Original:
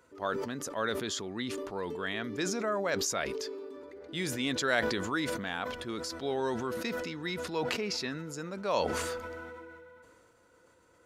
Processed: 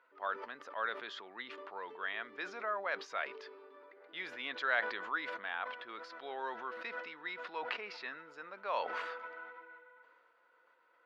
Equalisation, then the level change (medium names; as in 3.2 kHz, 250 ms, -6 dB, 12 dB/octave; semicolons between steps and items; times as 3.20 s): high-pass 1 kHz 12 dB/octave; distance through air 340 m; treble shelf 5.7 kHz -12 dB; +2.5 dB